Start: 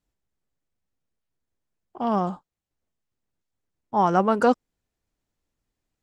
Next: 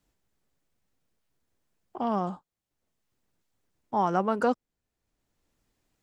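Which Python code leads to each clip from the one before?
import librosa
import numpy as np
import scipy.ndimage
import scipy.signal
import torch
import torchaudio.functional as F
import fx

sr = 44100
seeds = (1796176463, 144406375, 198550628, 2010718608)

y = fx.band_squash(x, sr, depth_pct=40)
y = F.gain(torch.from_numpy(y), -5.0).numpy()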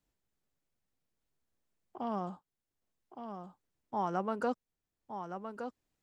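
y = x + 10.0 ** (-8.0 / 20.0) * np.pad(x, (int(1166 * sr / 1000.0), 0))[:len(x)]
y = F.gain(torch.from_numpy(y), -8.0).numpy()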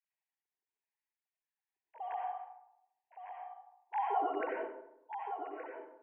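y = fx.sine_speech(x, sr)
y = fx.fixed_phaser(y, sr, hz=840.0, stages=8)
y = fx.rev_freeverb(y, sr, rt60_s=0.83, hf_ratio=0.45, predelay_ms=45, drr_db=-2.0)
y = F.gain(torch.from_numpy(y), -1.5).numpy()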